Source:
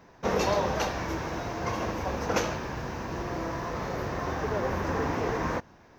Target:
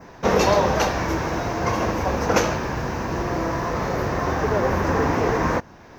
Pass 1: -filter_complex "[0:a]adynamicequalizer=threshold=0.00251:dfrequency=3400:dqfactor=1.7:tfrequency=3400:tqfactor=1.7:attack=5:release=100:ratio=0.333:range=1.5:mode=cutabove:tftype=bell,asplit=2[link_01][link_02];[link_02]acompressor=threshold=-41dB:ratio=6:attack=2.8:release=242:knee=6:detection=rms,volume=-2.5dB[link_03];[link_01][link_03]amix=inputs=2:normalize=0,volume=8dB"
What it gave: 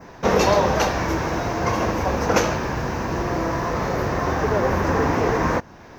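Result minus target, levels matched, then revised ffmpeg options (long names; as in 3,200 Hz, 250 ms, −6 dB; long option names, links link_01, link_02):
downward compressor: peak gain reduction −9.5 dB
-filter_complex "[0:a]adynamicequalizer=threshold=0.00251:dfrequency=3400:dqfactor=1.7:tfrequency=3400:tqfactor=1.7:attack=5:release=100:ratio=0.333:range=1.5:mode=cutabove:tftype=bell,asplit=2[link_01][link_02];[link_02]acompressor=threshold=-52.5dB:ratio=6:attack=2.8:release=242:knee=6:detection=rms,volume=-2.5dB[link_03];[link_01][link_03]amix=inputs=2:normalize=0,volume=8dB"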